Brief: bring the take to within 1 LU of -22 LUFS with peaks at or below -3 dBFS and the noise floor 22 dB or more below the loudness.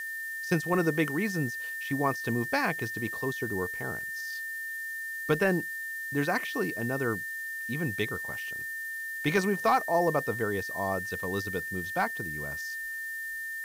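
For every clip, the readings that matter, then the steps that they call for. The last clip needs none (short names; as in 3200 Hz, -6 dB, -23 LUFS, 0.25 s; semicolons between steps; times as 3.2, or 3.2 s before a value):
steady tone 1800 Hz; tone level -34 dBFS; noise floor -37 dBFS; noise floor target -53 dBFS; loudness -30.5 LUFS; peak -15.0 dBFS; loudness target -22.0 LUFS
-> notch 1800 Hz, Q 30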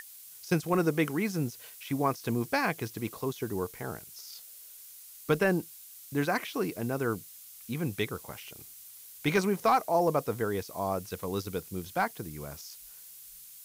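steady tone none; noise floor -50 dBFS; noise floor target -53 dBFS
-> denoiser 6 dB, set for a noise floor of -50 dBFS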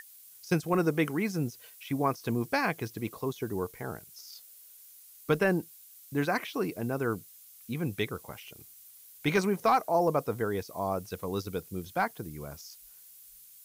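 noise floor -54 dBFS; loudness -31.0 LUFS; peak -15.0 dBFS; loudness target -22.0 LUFS
-> gain +9 dB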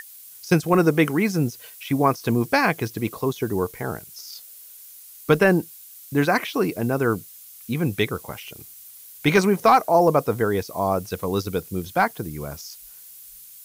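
loudness -22.0 LUFS; peak -6.0 dBFS; noise floor -45 dBFS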